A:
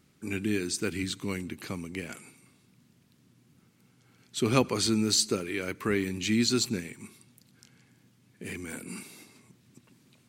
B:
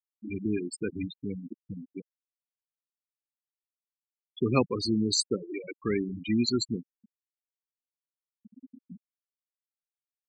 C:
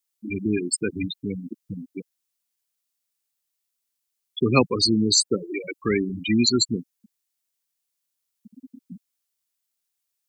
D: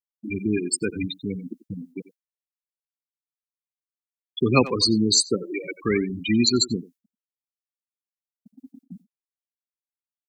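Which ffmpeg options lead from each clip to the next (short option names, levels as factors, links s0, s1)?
-af "afftfilt=real='re*gte(hypot(re,im),0.1)':imag='im*gte(hypot(re,im),0.1)':win_size=1024:overlap=0.75"
-filter_complex "[0:a]highshelf=f=3000:g=12,acrossover=split=270|790|1900[s0][s1][s2][s3];[s3]alimiter=limit=0.211:level=0:latency=1:release=144[s4];[s0][s1][s2][s4]amix=inputs=4:normalize=0,volume=1.88"
-filter_complex "[0:a]agate=range=0.0224:threshold=0.00794:ratio=3:detection=peak,asplit=2[s0][s1];[s1]adelay=90,highpass=300,lowpass=3400,asoftclip=type=hard:threshold=0.316,volume=0.178[s2];[s0][s2]amix=inputs=2:normalize=0"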